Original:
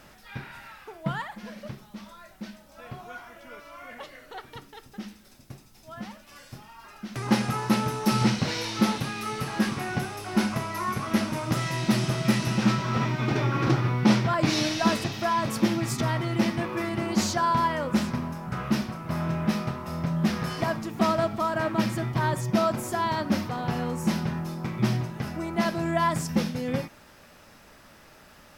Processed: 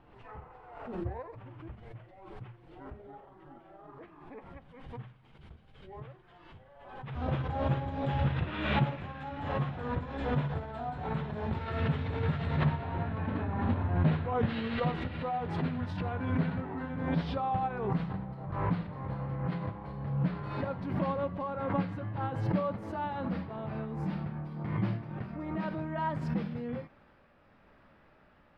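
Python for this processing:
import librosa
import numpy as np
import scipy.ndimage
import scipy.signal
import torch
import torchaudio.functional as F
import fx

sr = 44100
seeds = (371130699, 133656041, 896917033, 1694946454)

y = fx.pitch_glide(x, sr, semitones=-11.0, runs='ending unshifted')
y = fx.air_absorb(y, sr, metres=450.0)
y = fx.pre_swell(y, sr, db_per_s=50.0)
y = y * librosa.db_to_amplitude(-6.0)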